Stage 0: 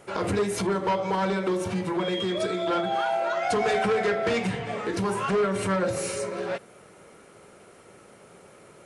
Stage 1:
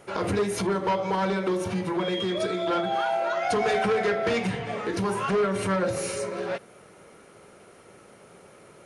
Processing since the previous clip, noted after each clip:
notch filter 7,700 Hz, Q 8.6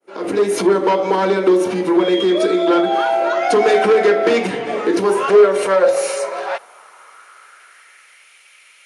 fade in at the beginning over 0.55 s
high-pass filter sweep 310 Hz → 2,400 Hz, 0:04.91–0:08.36
level +7.5 dB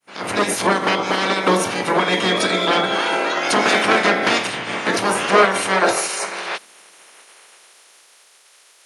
ceiling on every frequency bin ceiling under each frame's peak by 24 dB
level −3 dB

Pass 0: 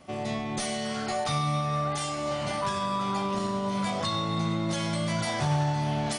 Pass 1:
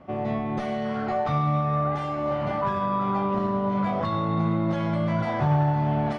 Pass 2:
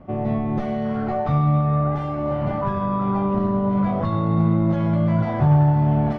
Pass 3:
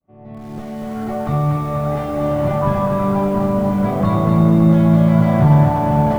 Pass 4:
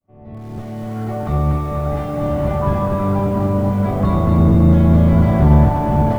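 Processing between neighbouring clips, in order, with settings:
low-pass filter 1,500 Hz 12 dB per octave; level +4.5 dB
spectral tilt −2.5 dB per octave
fade in at the beginning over 2.02 s; feedback delay with all-pass diffusion 475 ms, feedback 55%, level −14.5 dB; feedback echo at a low word length 241 ms, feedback 55%, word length 8 bits, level −3 dB; level +4 dB
sub-octave generator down 1 octave, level 0 dB; level −2 dB

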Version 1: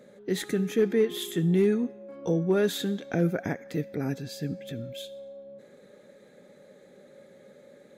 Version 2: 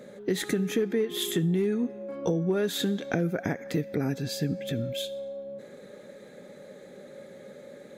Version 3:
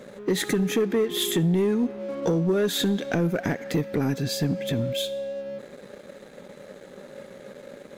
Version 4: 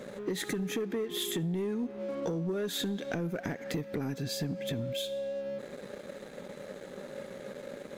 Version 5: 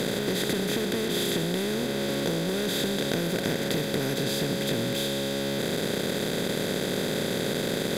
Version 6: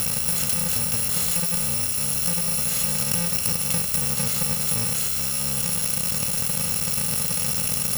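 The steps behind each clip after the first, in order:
downward compressor 6 to 1, threshold −30 dBFS, peak gain reduction 11.5 dB; level +6.5 dB
leveller curve on the samples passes 2; level −2.5 dB
downward compressor 3 to 1, threshold −34 dBFS, peak gain reduction 11 dB
compressor on every frequency bin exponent 0.2; level −1.5 dB
samples in bit-reversed order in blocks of 128 samples; level +4 dB

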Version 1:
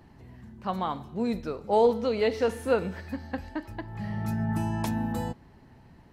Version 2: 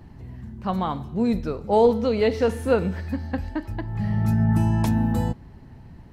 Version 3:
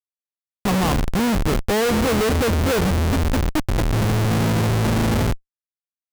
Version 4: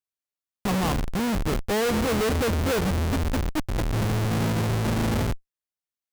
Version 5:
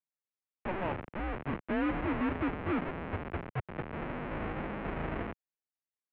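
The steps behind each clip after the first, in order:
low-shelf EQ 200 Hz +10.5 dB; level +2.5 dB
comparator with hysteresis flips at −28 dBFS; level +5 dB
brickwall limiter −22 dBFS, peak gain reduction 9.5 dB
single-sideband voice off tune −180 Hz 270–2,700 Hz; level −6 dB

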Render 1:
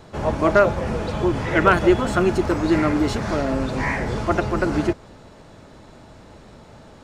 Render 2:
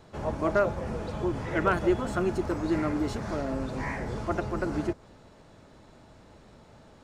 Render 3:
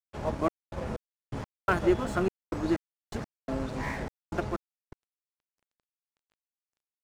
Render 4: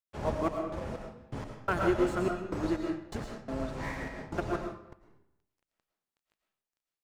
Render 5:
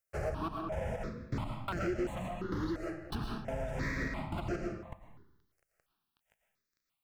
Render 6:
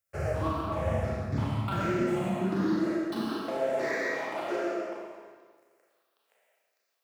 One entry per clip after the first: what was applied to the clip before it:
dynamic equaliser 2,900 Hz, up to −4 dB, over −38 dBFS, Q 0.74; level −8.5 dB
gate pattern "xxxx..xx...x..x" 125 BPM −60 dB; dead-zone distortion −44 dBFS; level +1 dB
convolution reverb RT60 0.75 s, pre-delay 70 ms, DRR 2.5 dB; amplitude modulation by smooth noise, depth 55%
downward compressor 4 to 1, threshold −38 dBFS, peak gain reduction 13.5 dB; gain into a clipping stage and back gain 35 dB; step-sequenced phaser 2.9 Hz 960–3,600 Hz; level +8.5 dB
mains-hum notches 60/120 Hz; four-comb reverb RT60 1.5 s, combs from 28 ms, DRR −4.5 dB; high-pass filter sweep 90 Hz → 470 Hz, 0:01.23–0:04.19

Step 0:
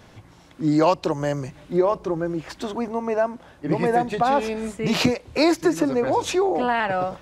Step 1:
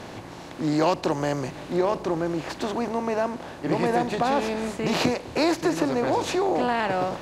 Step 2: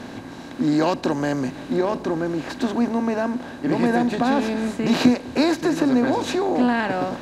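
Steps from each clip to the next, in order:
compressor on every frequency bin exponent 0.6; level −6 dB
hollow resonant body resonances 250/1,600/3,900 Hz, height 12 dB, ringing for 60 ms

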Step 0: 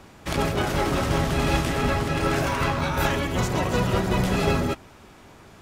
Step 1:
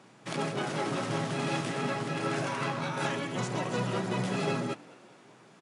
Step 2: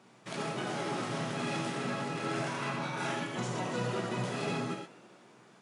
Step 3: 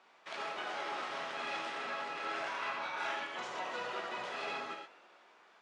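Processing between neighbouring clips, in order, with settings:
brick-wall band-pass 110–11,000 Hz; echo with shifted repeats 208 ms, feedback 57%, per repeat +54 Hz, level −23 dB; level −7.5 dB
reverb whose tail is shaped and stops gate 150 ms flat, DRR 0.5 dB; level −5 dB
band-pass filter 710–4,000 Hz

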